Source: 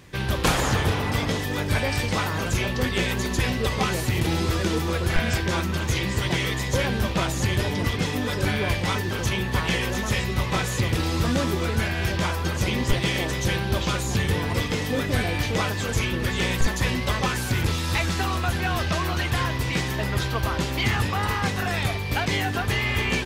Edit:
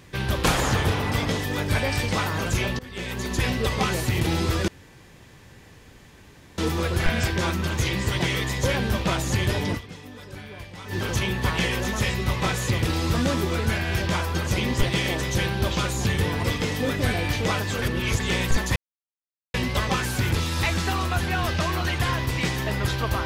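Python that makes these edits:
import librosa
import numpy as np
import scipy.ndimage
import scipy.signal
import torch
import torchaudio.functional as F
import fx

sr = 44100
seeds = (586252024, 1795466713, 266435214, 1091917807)

y = fx.edit(x, sr, fx.fade_in_from(start_s=2.79, length_s=0.66, floor_db=-23.5),
    fx.insert_room_tone(at_s=4.68, length_s=1.9),
    fx.fade_down_up(start_s=7.84, length_s=1.19, db=-15.5, fade_s=0.25, curve='exp'),
    fx.reverse_span(start_s=15.92, length_s=0.38),
    fx.insert_silence(at_s=16.86, length_s=0.78), tone=tone)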